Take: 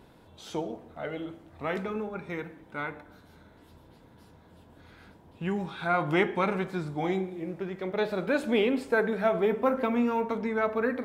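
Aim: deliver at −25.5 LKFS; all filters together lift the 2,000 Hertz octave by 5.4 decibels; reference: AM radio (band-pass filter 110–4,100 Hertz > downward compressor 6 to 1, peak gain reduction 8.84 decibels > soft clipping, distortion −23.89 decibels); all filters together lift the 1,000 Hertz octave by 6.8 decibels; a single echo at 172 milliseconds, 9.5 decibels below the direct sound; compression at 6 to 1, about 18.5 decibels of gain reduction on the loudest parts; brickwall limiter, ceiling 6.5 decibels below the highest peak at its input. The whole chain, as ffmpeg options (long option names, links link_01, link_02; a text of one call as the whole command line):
ffmpeg -i in.wav -af "equalizer=frequency=1000:width_type=o:gain=8,equalizer=frequency=2000:width_type=o:gain=4,acompressor=threshold=-37dB:ratio=6,alimiter=level_in=7dB:limit=-24dB:level=0:latency=1,volume=-7dB,highpass=110,lowpass=4100,aecho=1:1:172:0.335,acompressor=threshold=-44dB:ratio=6,asoftclip=threshold=-36.5dB,volume=23.5dB" out.wav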